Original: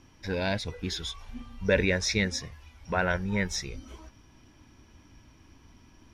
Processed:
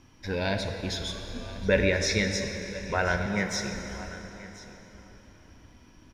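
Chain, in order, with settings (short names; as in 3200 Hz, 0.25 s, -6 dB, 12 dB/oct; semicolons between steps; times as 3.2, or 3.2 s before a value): 3.26–3.74 HPF 120 Hz 24 dB/oct; echo 1.034 s -17.5 dB; plate-style reverb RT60 4.1 s, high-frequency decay 0.7×, DRR 4.5 dB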